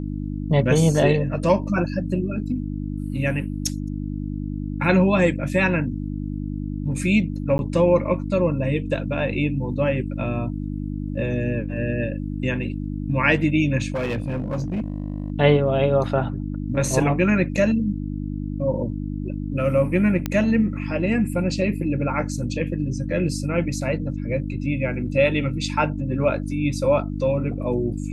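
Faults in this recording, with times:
mains hum 50 Hz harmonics 6 −28 dBFS
0:07.58–0:07.59: drop-out 11 ms
0:13.92–0:15.32: clipping −21.5 dBFS
0:20.26: click −10 dBFS

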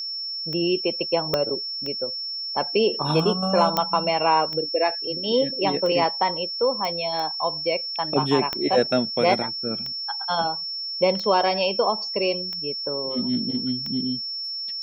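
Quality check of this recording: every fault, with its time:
scratch tick 45 rpm −20 dBFS
whistle 5,400 Hz −28 dBFS
0:01.34: click −8 dBFS
0:03.77: click −7 dBFS
0:06.85: click −15 dBFS
0:08.53: click −15 dBFS

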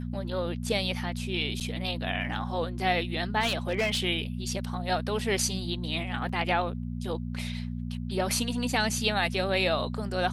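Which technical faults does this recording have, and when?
mains hum 60 Hz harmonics 4 −34 dBFS
0:01.60–0:01.61: drop-out 8.1 ms
0:03.40–0:04.00: clipping −22 dBFS
0:06.29: drop-out 3.8 ms

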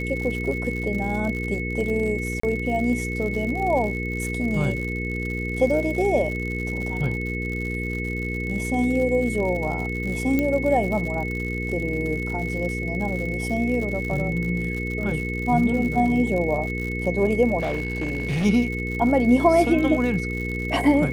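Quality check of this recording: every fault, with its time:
surface crackle 100 per second −30 dBFS
mains hum 60 Hz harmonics 8 −29 dBFS
whistle 2,200 Hz −30 dBFS
0:02.40–0:02.43: drop-out 34 ms
0:10.39: click −11 dBFS
0:17.59–0:18.46: clipping −21 dBFS

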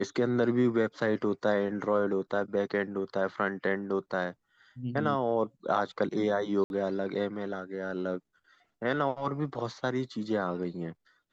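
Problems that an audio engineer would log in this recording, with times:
0:06.64–0:06.70: drop-out 61 ms

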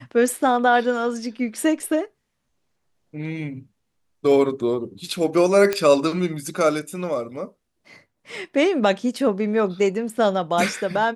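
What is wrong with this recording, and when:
0:05.73: click −8 dBFS

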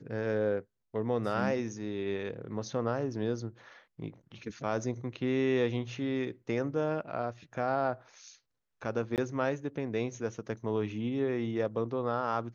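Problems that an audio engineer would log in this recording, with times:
0:09.16–0:09.18: drop-out 18 ms

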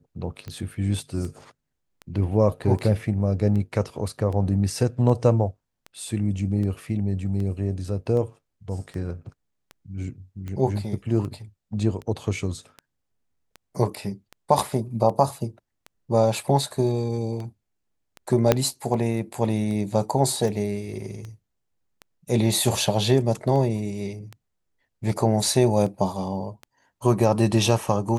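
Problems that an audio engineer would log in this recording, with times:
scratch tick 78 rpm −23 dBFS
0:18.52: click −3 dBFS

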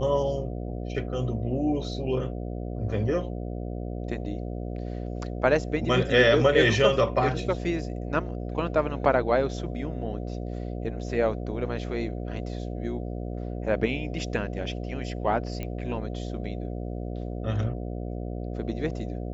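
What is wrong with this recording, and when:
mains buzz 60 Hz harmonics 12 −33 dBFS
0:15.63: click −20 dBFS

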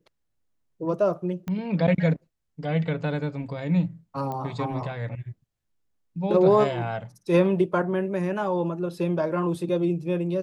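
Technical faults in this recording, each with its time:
0:01.48: click −20 dBFS
0:04.32: click −21 dBFS

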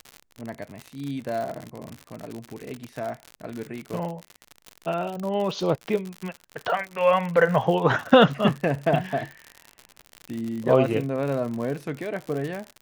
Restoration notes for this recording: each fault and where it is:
surface crackle 83 per second −29 dBFS

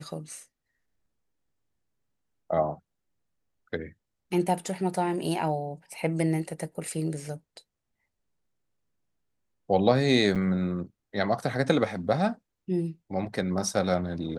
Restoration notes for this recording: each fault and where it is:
0:10.35–0:10.36: drop-out 7.1 ms

